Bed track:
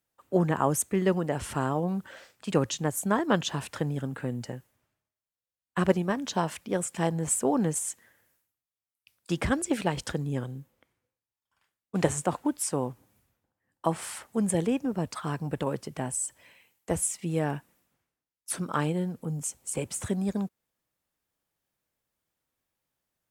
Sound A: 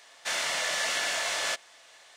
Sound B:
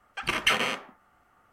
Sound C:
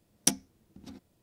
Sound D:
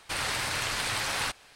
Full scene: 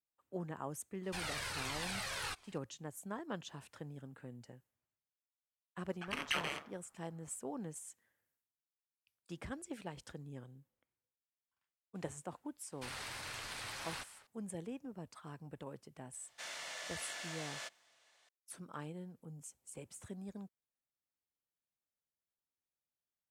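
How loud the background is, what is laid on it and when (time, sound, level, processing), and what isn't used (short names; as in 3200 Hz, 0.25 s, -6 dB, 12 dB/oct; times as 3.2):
bed track -18 dB
1.03 add D -6.5 dB + cascading flanger falling 1.4 Hz
5.84 add B -10 dB + ring modulator 73 Hz
12.72 add D -14.5 dB
16.13 add A -16 dB
not used: C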